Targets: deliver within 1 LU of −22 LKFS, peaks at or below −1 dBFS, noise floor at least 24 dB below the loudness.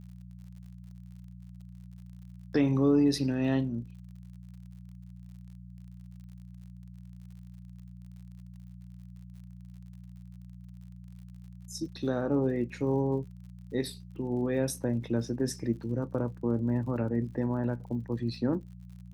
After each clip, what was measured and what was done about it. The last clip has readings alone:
crackle rate 56 per second; mains hum 60 Hz; hum harmonics up to 180 Hz; level of the hum −44 dBFS; integrated loudness −30.5 LKFS; sample peak −14.5 dBFS; target loudness −22.0 LKFS
→ click removal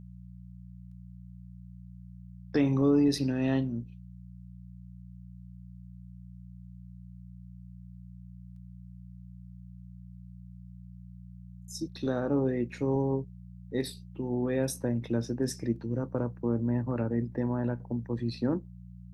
crackle rate 0.21 per second; mains hum 60 Hz; hum harmonics up to 180 Hz; level of the hum −44 dBFS
→ hum removal 60 Hz, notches 3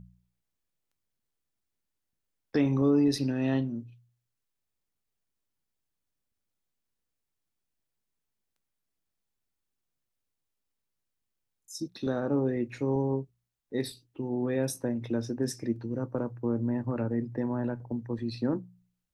mains hum none found; integrated loudness −30.5 LKFS; sample peak −14.5 dBFS; target loudness −22.0 LKFS
→ level +8.5 dB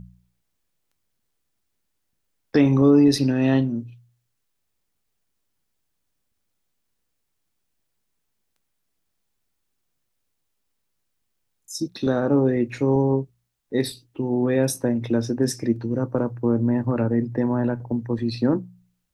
integrated loudness −22.0 LKFS; sample peak −6.0 dBFS; background noise floor −75 dBFS

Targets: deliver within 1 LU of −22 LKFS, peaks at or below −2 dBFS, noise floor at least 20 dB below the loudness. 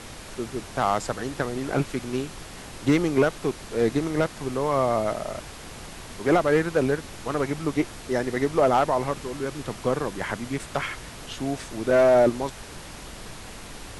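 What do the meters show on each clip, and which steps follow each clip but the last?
share of clipped samples 0.4%; peaks flattened at −12.5 dBFS; background noise floor −41 dBFS; target noise floor −46 dBFS; integrated loudness −25.5 LKFS; sample peak −12.5 dBFS; target loudness −22.0 LKFS
→ clipped peaks rebuilt −12.5 dBFS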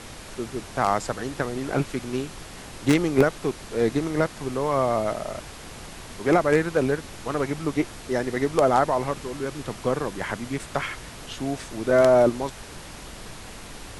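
share of clipped samples 0.0%; background noise floor −41 dBFS; target noise floor −45 dBFS
→ noise reduction from a noise print 6 dB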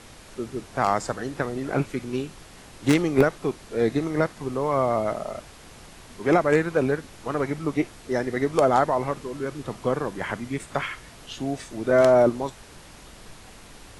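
background noise floor −47 dBFS; integrated loudness −25.0 LKFS; sample peak −3.5 dBFS; target loudness −22.0 LKFS
→ level +3 dB
brickwall limiter −2 dBFS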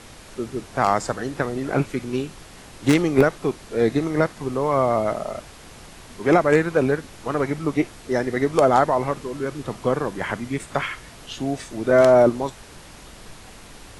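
integrated loudness −22.0 LKFS; sample peak −2.0 dBFS; background noise floor −44 dBFS

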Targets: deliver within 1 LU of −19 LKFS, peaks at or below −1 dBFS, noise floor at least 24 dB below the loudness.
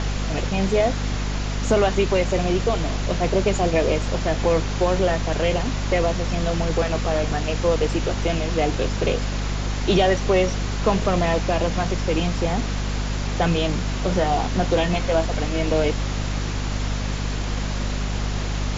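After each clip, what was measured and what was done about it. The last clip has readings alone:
mains hum 50 Hz; hum harmonics up to 250 Hz; level of the hum −23 dBFS; background noise floor −26 dBFS; target noise floor −47 dBFS; integrated loudness −22.5 LKFS; sample peak −6.5 dBFS; target loudness −19.0 LKFS
→ mains-hum notches 50/100/150/200/250 Hz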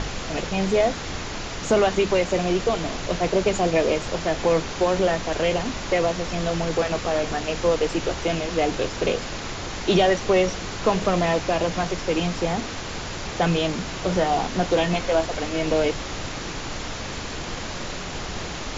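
mains hum none found; background noise floor −32 dBFS; target noise floor −48 dBFS
→ noise reduction from a noise print 16 dB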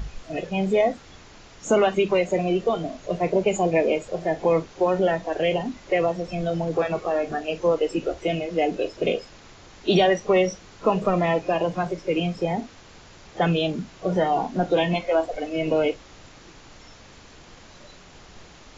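background noise floor −48 dBFS; integrated loudness −24.0 LKFS; sample peak −8.0 dBFS; target loudness −19.0 LKFS
→ level +5 dB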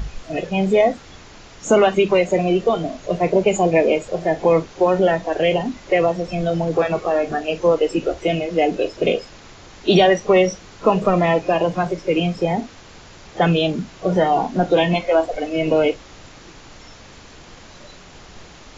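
integrated loudness −19.0 LKFS; sample peak −3.0 dBFS; background noise floor −43 dBFS

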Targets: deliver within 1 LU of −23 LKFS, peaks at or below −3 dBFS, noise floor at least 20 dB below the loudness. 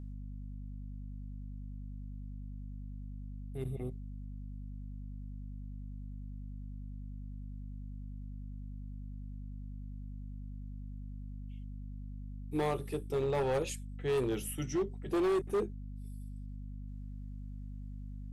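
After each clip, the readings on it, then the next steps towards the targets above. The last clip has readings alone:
share of clipped samples 1.2%; peaks flattened at −27.0 dBFS; mains hum 50 Hz; hum harmonics up to 250 Hz; level of the hum −41 dBFS; integrated loudness −40.0 LKFS; sample peak −27.0 dBFS; target loudness −23.0 LKFS
→ clipped peaks rebuilt −27 dBFS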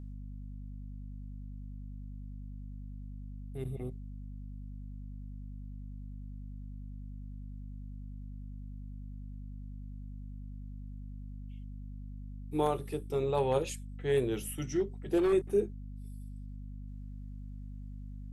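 share of clipped samples 0.0%; mains hum 50 Hz; hum harmonics up to 450 Hz; level of the hum −41 dBFS
→ hum removal 50 Hz, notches 9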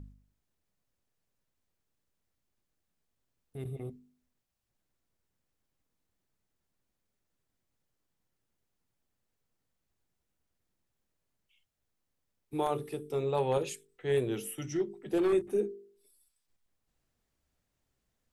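mains hum none found; integrated loudness −33.0 LKFS; sample peak −18.5 dBFS; target loudness −23.0 LKFS
→ level +10 dB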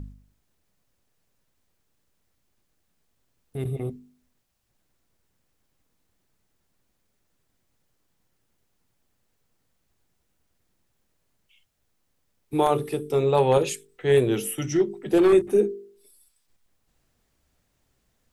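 integrated loudness −23.0 LKFS; sample peak −8.5 dBFS; background noise floor −73 dBFS

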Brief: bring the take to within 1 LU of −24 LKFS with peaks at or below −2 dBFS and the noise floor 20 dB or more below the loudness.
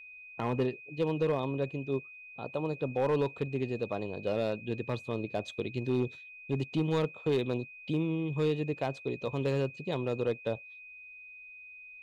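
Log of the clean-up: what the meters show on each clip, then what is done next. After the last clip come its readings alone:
share of clipped samples 0.8%; peaks flattened at −22.0 dBFS; interfering tone 2,500 Hz; level of the tone −47 dBFS; integrated loudness −33.0 LKFS; sample peak −22.0 dBFS; target loudness −24.0 LKFS
→ clipped peaks rebuilt −22 dBFS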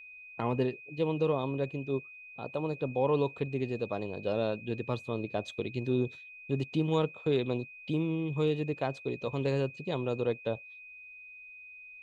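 share of clipped samples 0.0%; interfering tone 2,500 Hz; level of the tone −47 dBFS
→ notch filter 2,500 Hz, Q 30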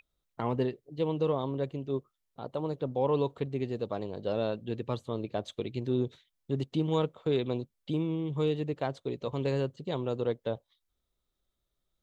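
interfering tone none found; integrated loudness −33.0 LKFS; sample peak −15.5 dBFS; target loudness −24.0 LKFS
→ level +9 dB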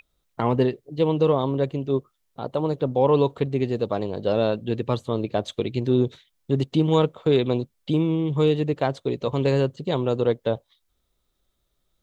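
integrated loudness −24.0 LKFS; sample peak −6.5 dBFS; background noise floor −74 dBFS

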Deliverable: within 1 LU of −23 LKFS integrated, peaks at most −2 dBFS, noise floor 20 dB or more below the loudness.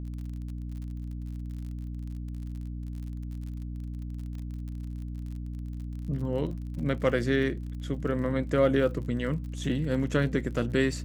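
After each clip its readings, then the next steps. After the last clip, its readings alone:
crackle rate 46 per second; mains hum 60 Hz; hum harmonics up to 300 Hz; level of the hum −33 dBFS; integrated loudness −31.5 LKFS; sample peak −11.5 dBFS; target loudness −23.0 LKFS
→ click removal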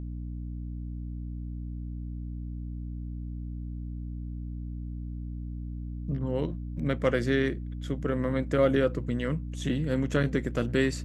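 crackle rate 0 per second; mains hum 60 Hz; hum harmonics up to 300 Hz; level of the hum −33 dBFS
→ hum removal 60 Hz, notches 5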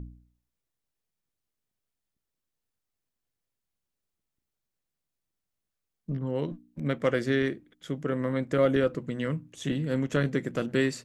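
mains hum none found; integrated loudness −29.0 LKFS; sample peak −12.5 dBFS; target loudness −23.0 LKFS
→ level +6 dB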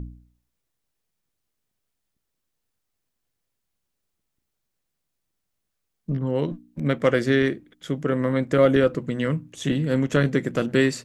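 integrated loudness −23.0 LKFS; sample peak −6.5 dBFS; background noise floor −80 dBFS

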